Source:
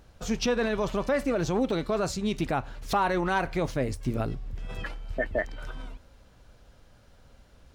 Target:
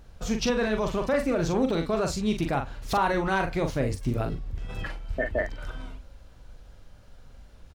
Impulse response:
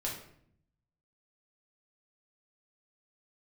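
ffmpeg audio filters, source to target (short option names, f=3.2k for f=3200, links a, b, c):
-filter_complex "[0:a]lowshelf=f=62:g=9.5,asplit=2[a][b];[b]adelay=42,volume=-6dB[c];[a][c]amix=inputs=2:normalize=0"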